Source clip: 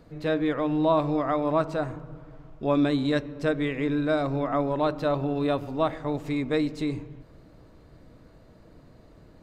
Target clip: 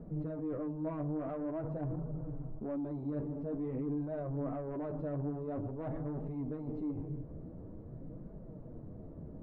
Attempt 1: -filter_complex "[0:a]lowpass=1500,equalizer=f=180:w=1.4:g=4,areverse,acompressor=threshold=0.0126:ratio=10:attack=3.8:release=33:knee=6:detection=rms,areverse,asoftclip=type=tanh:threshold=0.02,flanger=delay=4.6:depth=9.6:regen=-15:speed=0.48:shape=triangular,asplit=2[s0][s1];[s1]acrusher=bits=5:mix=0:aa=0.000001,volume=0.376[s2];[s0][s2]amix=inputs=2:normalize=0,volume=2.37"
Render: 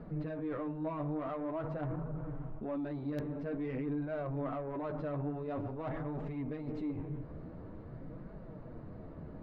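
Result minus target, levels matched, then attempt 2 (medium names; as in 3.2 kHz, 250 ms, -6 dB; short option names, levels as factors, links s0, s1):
2 kHz band +9.0 dB
-filter_complex "[0:a]lowpass=580,equalizer=f=180:w=1.4:g=4,areverse,acompressor=threshold=0.0126:ratio=10:attack=3.8:release=33:knee=6:detection=rms,areverse,asoftclip=type=tanh:threshold=0.02,flanger=delay=4.6:depth=9.6:regen=-15:speed=0.48:shape=triangular,asplit=2[s0][s1];[s1]acrusher=bits=5:mix=0:aa=0.000001,volume=0.376[s2];[s0][s2]amix=inputs=2:normalize=0,volume=2.37"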